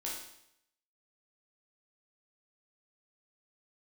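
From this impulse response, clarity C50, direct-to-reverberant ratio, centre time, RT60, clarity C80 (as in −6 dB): 2.0 dB, −5.0 dB, 49 ms, 0.75 s, 6.0 dB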